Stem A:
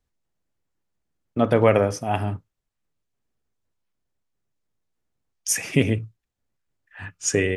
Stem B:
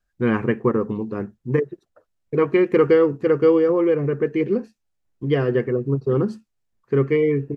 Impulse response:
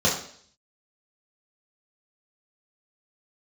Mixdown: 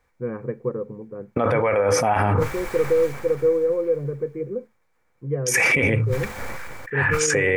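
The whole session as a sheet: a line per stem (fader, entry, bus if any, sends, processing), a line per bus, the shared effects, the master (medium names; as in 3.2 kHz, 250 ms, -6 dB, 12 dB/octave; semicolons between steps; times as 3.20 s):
+2.0 dB, 0.00 s, no send, compressor with a negative ratio -25 dBFS, ratio -0.5; high-order bell 1.3 kHz +11.5 dB; decay stretcher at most 20 dB/s
-14.0 dB, 0.00 s, no send, low-pass 1.7 kHz 24 dB/octave; peaking EQ 140 Hz +11 dB 0.38 oct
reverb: none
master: small resonant body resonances 510/2300 Hz, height 14 dB, ringing for 40 ms; peak limiter -10.5 dBFS, peak gain reduction 12.5 dB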